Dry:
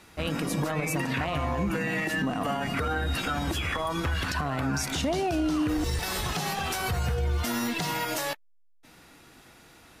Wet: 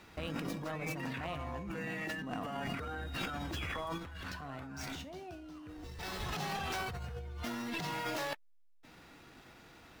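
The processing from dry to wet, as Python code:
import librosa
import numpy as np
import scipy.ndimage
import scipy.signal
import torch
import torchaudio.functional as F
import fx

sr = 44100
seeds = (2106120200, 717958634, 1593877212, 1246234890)

y = scipy.ndimage.median_filter(x, 5, mode='constant')
y = fx.over_compress(y, sr, threshold_db=-33.0, ratio=-1.0)
y = fx.comb_fb(y, sr, f0_hz=92.0, decay_s=0.26, harmonics='all', damping=0.0, mix_pct=60, at=(3.97, 6.19), fade=0.02)
y = F.gain(torch.from_numpy(y), -6.5).numpy()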